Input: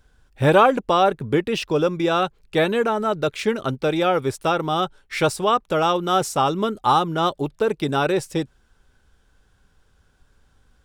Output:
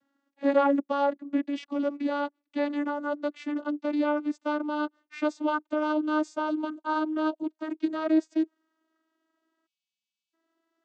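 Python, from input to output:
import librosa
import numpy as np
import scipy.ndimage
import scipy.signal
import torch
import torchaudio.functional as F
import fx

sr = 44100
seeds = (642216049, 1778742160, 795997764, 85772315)

y = fx.vocoder_glide(x, sr, note=61, semitones=3)
y = fx.spec_erase(y, sr, start_s=9.67, length_s=0.67, low_hz=220.0, high_hz=2100.0)
y = F.gain(torch.from_numpy(y), -6.5).numpy()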